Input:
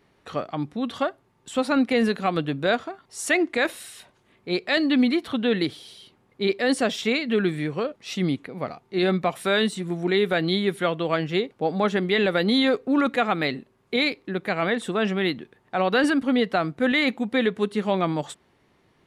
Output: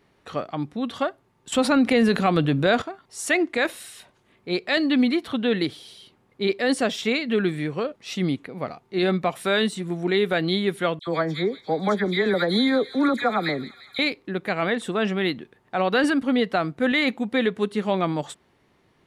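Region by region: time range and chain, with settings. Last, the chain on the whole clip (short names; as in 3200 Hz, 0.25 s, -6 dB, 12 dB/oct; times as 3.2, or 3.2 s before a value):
1.52–2.82 low shelf 140 Hz +6 dB + fast leveller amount 50%
10.99–13.99 Butterworth band-stop 2800 Hz, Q 2.7 + dispersion lows, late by 79 ms, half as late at 1900 Hz + thin delay 0.172 s, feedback 71%, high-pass 2500 Hz, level -13 dB
whole clip: dry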